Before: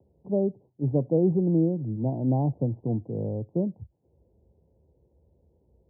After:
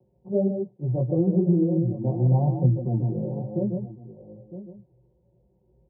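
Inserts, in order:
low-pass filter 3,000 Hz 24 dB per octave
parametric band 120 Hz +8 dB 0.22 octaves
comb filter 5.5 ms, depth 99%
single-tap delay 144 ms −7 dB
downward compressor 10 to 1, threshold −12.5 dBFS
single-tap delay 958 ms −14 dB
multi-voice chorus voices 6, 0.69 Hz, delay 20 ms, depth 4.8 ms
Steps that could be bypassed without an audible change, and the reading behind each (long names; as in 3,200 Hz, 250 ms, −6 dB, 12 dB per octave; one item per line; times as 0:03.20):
low-pass filter 3,000 Hz: nothing at its input above 850 Hz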